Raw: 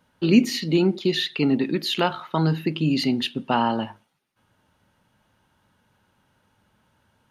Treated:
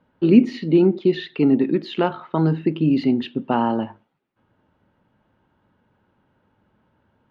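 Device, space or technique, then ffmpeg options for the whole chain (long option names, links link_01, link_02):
phone in a pocket: -af "lowpass=3400,equalizer=frequency=340:width_type=o:width=1.4:gain=5.5,highshelf=frequency=2300:gain=-8.5"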